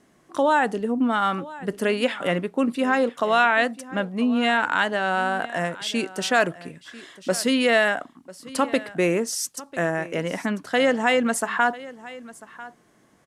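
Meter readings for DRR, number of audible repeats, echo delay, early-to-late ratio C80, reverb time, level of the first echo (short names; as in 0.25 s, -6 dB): none, 1, 0.995 s, none, none, -18.5 dB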